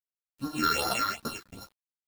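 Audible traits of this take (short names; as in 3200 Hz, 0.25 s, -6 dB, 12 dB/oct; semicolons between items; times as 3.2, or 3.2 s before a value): a buzz of ramps at a fixed pitch in blocks of 32 samples; phasing stages 6, 2.6 Hz, lowest notch 670–2600 Hz; a quantiser's noise floor 10-bit, dither none; a shimmering, thickened sound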